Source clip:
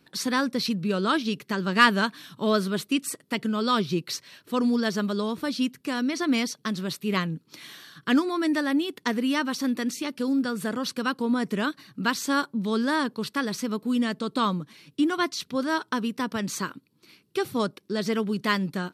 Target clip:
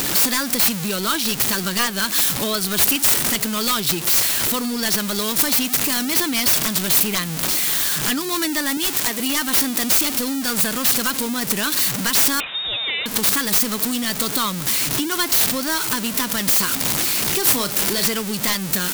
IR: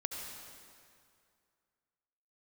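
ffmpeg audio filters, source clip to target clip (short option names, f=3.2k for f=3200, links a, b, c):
-filter_complex "[0:a]aeval=exprs='val(0)+0.5*0.0422*sgn(val(0))':c=same,asettb=1/sr,asplit=3[a][b][c];[a]atrim=end=8.774[d];[b]atrim=start=8.77:end=9.2,asetpts=PTS-STARTPTS,afade=t=in:d=0.004:c=qsin,afade=t=out:st=0.426:d=0.004:c=qsin,highpass=270[e];[c]atrim=start=9.196[f];[d][e]acrossfade=d=0.004:c1=hsin:c2=qsin[g];[g][f]acrossfade=d=0.004:c1=qsin:c2=hsin,acompressor=threshold=-30dB:ratio=3,crystalizer=i=7.5:c=0,aeval=exprs='(mod(4.22*val(0)+1,2)-1)/4.22':c=same,asettb=1/sr,asplit=3[h][i][j];[h]atrim=end=17.394[k];[i]atrim=start=17.39:end=18.06,asetpts=PTS-STARTPTS,afade=t=in:d=0.004:c=qsin,afade=t=out:st=0.666:d=0.004:c=qsin,asplit=2[l][m];[m]adelay=35,volume=-9.5dB[n];[l][n]amix=inputs=2:normalize=0,atrim=end_sample=29547[o];[j]atrim=start=18.056[p];[k][o]acrossfade=d=0.004:c1=hsin:c2=qsin[q];[q][p]acrossfade=d=0.004:c1=qsin:c2=hsin,asplit=2[r][s];[s]adelay=932.9,volume=-20dB,highshelf=f=4k:g=-21[t];[r][t]amix=inputs=2:normalize=0,asettb=1/sr,asplit=3[u][v][w];[u]atrim=end=12.404[x];[v]atrim=start=12.4:end=13.06,asetpts=PTS-STARTPTS,afade=t=in:d=0.004:c=qsin,afade=t=out:st=0.656:d=0.004:c=qsin,lowpass=f=3.3k:t=q:w=0.5098,lowpass=f=3.3k:t=q:w=0.6013,lowpass=f=3.3k:t=q:w=0.9,lowpass=f=3.3k:t=q:w=2.563,afreqshift=-3900[y];[w]atrim=start=13.056[z];[x][y]acrossfade=d=0.004:c1=hsin:c2=qsin[aa];[aa][z]acrossfade=d=0.004:c1=qsin:c2=hsin,volume=4dB"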